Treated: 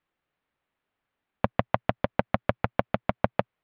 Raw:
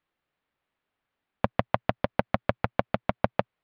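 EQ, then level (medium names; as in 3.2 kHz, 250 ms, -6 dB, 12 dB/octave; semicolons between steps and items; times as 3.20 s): distance through air 280 m; treble shelf 3.7 kHz +9 dB; +1.0 dB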